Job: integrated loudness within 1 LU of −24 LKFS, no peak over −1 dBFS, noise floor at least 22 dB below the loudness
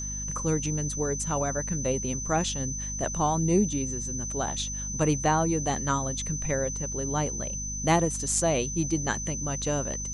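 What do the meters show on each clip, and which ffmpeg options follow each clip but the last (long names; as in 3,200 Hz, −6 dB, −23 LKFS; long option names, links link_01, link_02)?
mains hum 50 Hz; hum harmonics up to 250 Hz; level of the hum −34 dBFS; interfering tone 6,100 Hz; level of the tone −33 dBFS; integrated loudness −27.5 LKFS; sample peak −11.0 dBFS; target loudness −24.0 LKFS
→ -af "bandreject=frequency=50:width_type=h:width=4,bandreject=frequency=100:width_type=h:width=4,bandreject=frequency=150:width_type=h:width=4,bandreject=frequency=200:width_type=h:width=4,bandreject=frequency=250:width_type=h:width=4"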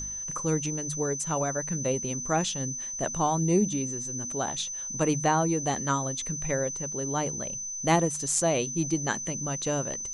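mains hum none found; interfering tone 6,100 Hz; level of the tone −33 dBFS
→ -af "bandreject=frequency=6100:width=30"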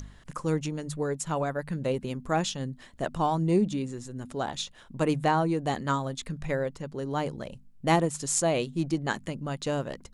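interfering tone none found; integrated loudness −29.5 LKFS; sample peak −10.5 dBFS; target loudness −24.0 LKFS
→ -af "volume=5.5dB"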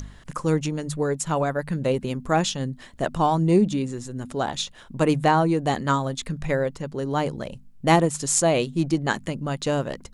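integrated loudness −24.0 LKFS; sample peak −5.0 dBFS; background noise floor −47 dBFS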